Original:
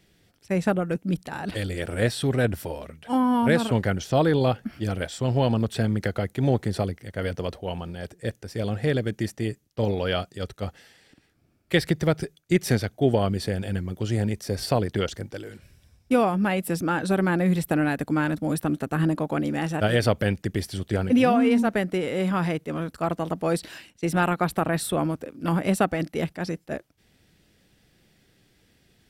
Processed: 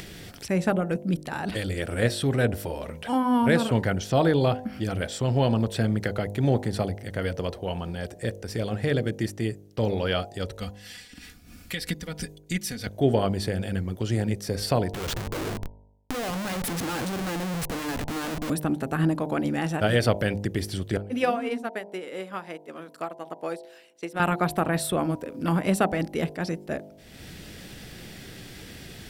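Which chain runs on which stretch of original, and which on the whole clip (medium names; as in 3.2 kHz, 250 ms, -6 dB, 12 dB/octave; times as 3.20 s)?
10.60–12.87 s: peaking EQ 520 Hz -12.5 dB 2.9 oct + comb 4.1 ms, depth 70% + tremolo 3 Hz, depth 72%
14.92–18.50 s: compression 5:1, threshold -28 dBFS + Schmitt trigger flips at -42 dBFS
20.97–24.20 s: high-pass 310 Hz + upward expansion 2.5:1, over -33 dBFS
whole clip: de-hum 50.73 Hz, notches 20; upward compressor, threshold -25 dBFS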